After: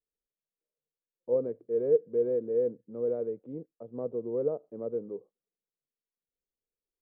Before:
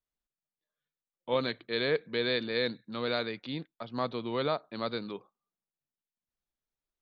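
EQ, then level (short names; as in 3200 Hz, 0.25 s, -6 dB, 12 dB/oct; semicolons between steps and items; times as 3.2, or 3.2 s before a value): synth low-pass 470 Hz, resonance Q 4.9; air absorption 460 m; -6.0 dB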